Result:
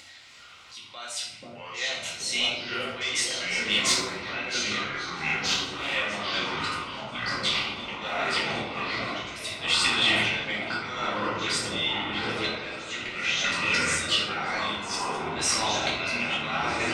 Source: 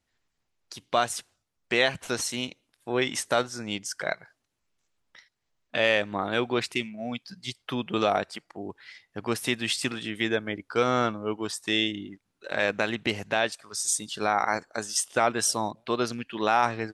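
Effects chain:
0:03.72–0:05.94: sub-harmonics by changed cycles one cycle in 3, inverted
downward compressor 3 to 1, threshold −31 dBFS, peak gain reduction 11 dB
high-pass filter 64 Hz 12 dB per octave
echo whose low-pass opens from repeat to repeat 488 ms, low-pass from 200 Hz, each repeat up 1 octave, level −3 dB
volume swells 685 ms
mid-hump overdrive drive 11 dB, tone 1,600 Hz, clips at −23.5 dBFS
octave-band graphic EQ 125/250/500/1,000/2,000/4,000/8,000 Hz +3/−7/−3/−4/+6/+10/+10 dB
convolution reverb RT60 0.80 s, pre-delay 4 ms, DRR −6.5 dB
delay with pitch and tempo change per echo 301 ms, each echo −5 semitones, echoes 3
upward compression, threshold −40 dBFS
low-shelf EQ 190 Hz −6.5 dB
notch filter 1,700 Hz, Q 5.3
level +4.5 dB

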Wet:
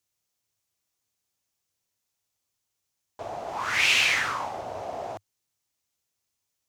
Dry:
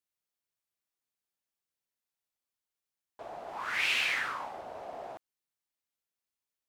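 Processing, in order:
graphic EQ with 15 bands 100 Hz +11 dB, 1,600 Hz −3 dB, 6,300 Hz +6 dB
level +8 dB

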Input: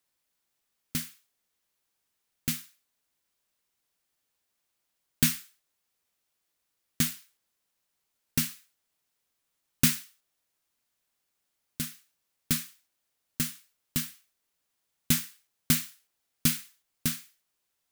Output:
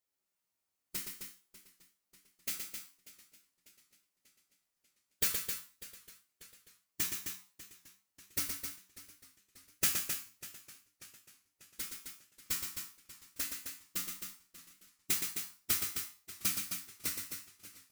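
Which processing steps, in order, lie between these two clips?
ceiling on every frequency bin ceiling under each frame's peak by 18 dB
parametric band 3,400 Hz −4 dB 0.49 octaves
notch filter 1,600 Hz, Q 14
random phases in short frames
tuned comb filter 94 Hz, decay 0.29 s, harmonics all, mix 80%
loudspeakers that aren't time-aligned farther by 41 metres −6 dB, 90 metres −7 dB
feedback echo with a swinging delay time 592 ms, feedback 54%, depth 120 cents, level −17 dB

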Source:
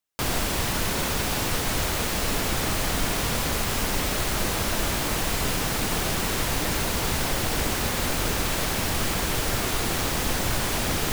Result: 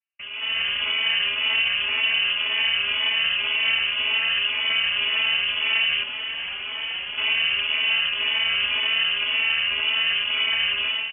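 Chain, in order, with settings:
channel vocoder with a chord as carrier major triad, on D#3
high-pass filter 410 Hz 12 dB per octave
spectral tilt −2.5 dB per octave
brickwall limiter −29 dBFS, peak gain reduction 10.5 dB
automatic gain control gain up to 13 dB
0:06.03–0:07.18: tube saturation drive 29 dB, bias 0.4
high-frequency loss of the air 320 metres
voice inversion scrambler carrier 3,200 Hz
barber-pole flanger 4 ms +1.9 Hz
level +5 dB

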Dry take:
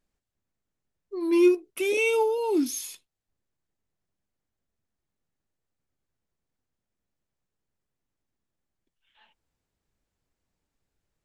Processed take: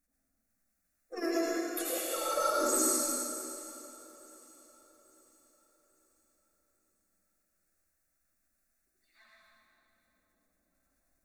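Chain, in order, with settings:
spectral magnitudes quantised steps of 30 dB
low-shelf EQ 250 Hz −9 dB
notch filter 3,900 Hz, Q 11
hum removal 63.08 Hz, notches 21
compressor whose output falls as the input rises −32 dBFS, ratio −1
formants moved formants +4 semitones
phaser with its sweep stopped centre 630 Hz, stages 8
feedback echo with a long and a short gap by turns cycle 845 ms, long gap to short 3 to 1, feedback 39%, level −20.5 dB
convolution reverb RT60 2.7 s, pre-delay 72 ms, DRR −5 dB
hard clipping −17.5 dBFS, distortion −47 dB
every ending faded ahead of time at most 140 dB per second

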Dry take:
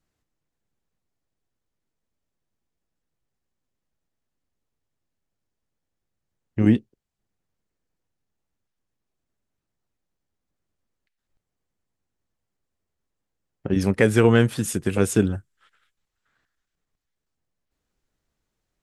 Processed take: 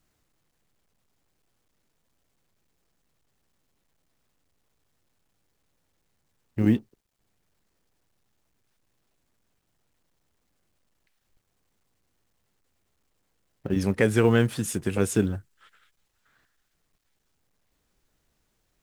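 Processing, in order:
mu-law and A-law mismatch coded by mu
level −4 dB

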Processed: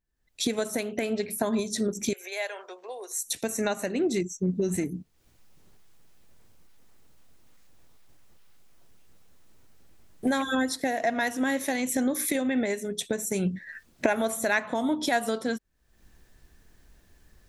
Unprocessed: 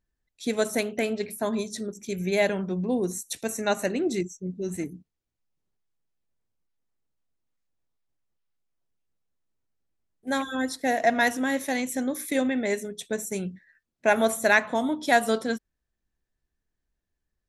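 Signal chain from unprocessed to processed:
camcorder AGC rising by 52 dB per second
0:02.13–0:03.26: Bessel high-pass filter 800 Hz, order 8
level −5.5 dB

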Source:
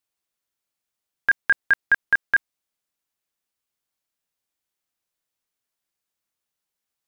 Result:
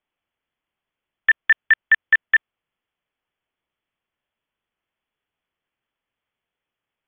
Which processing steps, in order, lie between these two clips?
in parallel at −4 dB: sine wavefolder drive 3 dB, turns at −10.5 dBFS
on the sum: voice inversion scrambler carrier 3,400 Hz
level −1.5 dB

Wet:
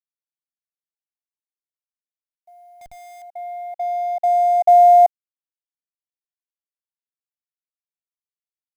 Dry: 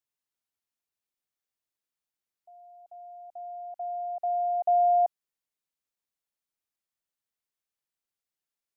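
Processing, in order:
mu-law and A-law mismatch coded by A
0:02.81–0:03.22: comparator with hysteresis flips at −59 dBFS
comb filter 1.3 ms, depth 57%
level +9 dB

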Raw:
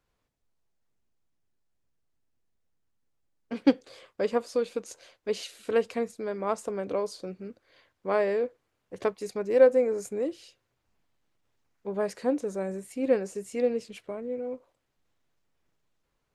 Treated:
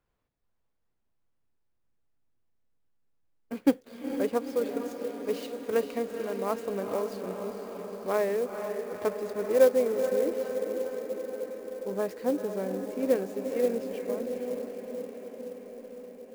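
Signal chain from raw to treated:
high-shelf EQ 3,500 Hz −7.5 dB
on a send: feedback delay with all-pass diffusion 464 ms, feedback 71%, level −7 dB
on the sum: converter with an unsteady clock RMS 0.024 ms
level −1.5 dB

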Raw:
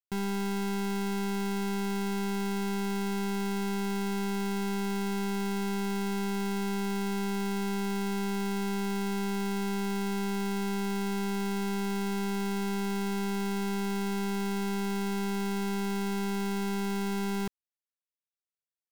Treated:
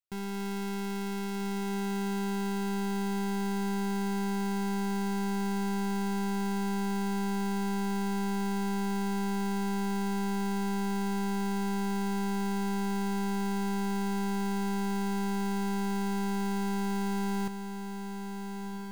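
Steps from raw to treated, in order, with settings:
automatic gain control
soft clipping −30.5 dBFS, distortion −23 dB
feedback delay with all-pass diffusion 1,467 ms, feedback 46%, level −7.5 dB
level −3 dB

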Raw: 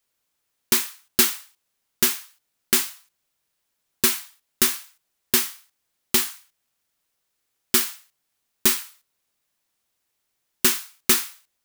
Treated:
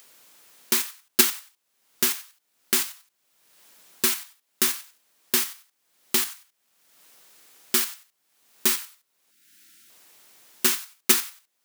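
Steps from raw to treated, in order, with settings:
in parallel at +2.5 dB: output level in coarse steps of 14 dB
0:09.31–0:09.90: on the sum: gain on a spectral selection 380–1,300 Hz −23 dB
upward compression, threshold −29 dBFS
0:04.69–0:05.40: background noise white −62 dBFS
high-pass filter 190 Hz 12 dB per octave
level −5.5 dB

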